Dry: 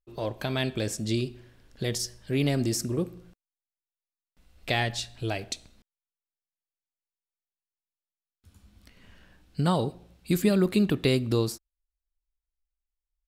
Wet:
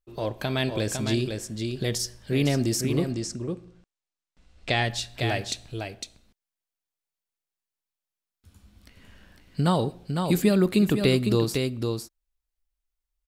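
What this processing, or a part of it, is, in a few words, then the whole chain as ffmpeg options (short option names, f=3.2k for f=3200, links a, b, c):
ducked delay: -filter_complex "[0:a]asplit=3[a][b][c];[b]adelay=505,volume=-5dB[d];[c]apad=whole_len=607690[e];[d][e]sidechaincompress=threshold=-28dB:ratio=8:attack=40:release=153[f];[a][f]amix=inputs=2:normalize=0,asettb=1/sr,asplit=3[g][h][i];[g]atrim=end=3.114[j];[h]atrim=start=3.11:end=4.84,asetpts=PTS-STARTPTS,afade=t=in:d=0.004:c=qsin,afade=t=out:st=1.726:d=0.004:c=qsin,lowpass=f=8.3k:w=0.5412,lowpass=f=8.3k:w=1.3066[k];[i]atrim=start=4.836[l];[j][k]acrossfade=d=0.004:c1=hsin:c2=qsin[m];[m][l]acrossfade=d=0.004:c1=qsin:c2=hsin,volume=2dB"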